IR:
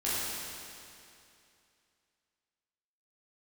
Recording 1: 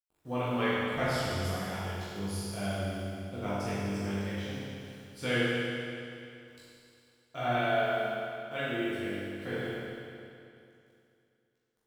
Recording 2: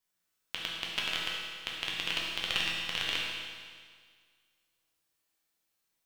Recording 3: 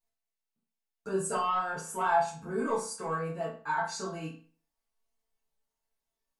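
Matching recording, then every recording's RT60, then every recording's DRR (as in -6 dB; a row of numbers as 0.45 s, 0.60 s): 1; 2.6 s, 1.8 s, 0.40 s; -11.0 dB, -4.5 dB, -10.5 dB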